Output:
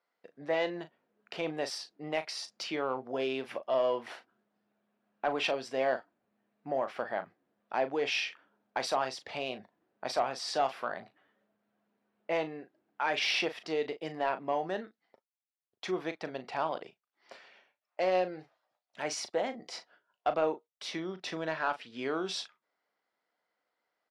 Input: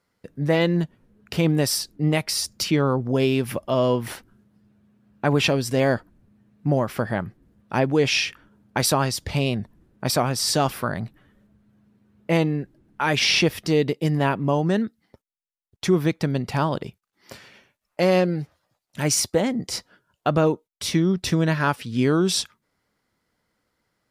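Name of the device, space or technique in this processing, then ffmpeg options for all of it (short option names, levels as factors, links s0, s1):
intercom: -filter_complex "[0:a]highpass=470,lowpass=4000,equalizer=f=710:t=o:w=0.4:g=6,asoftclip=type=tanh:threshold=0.316,asplit=2[s0][s1];[s1]adelay=38,volume=0.282[s2];[s0][s2]amix=inputs=2:normalize=0,volume=0.398"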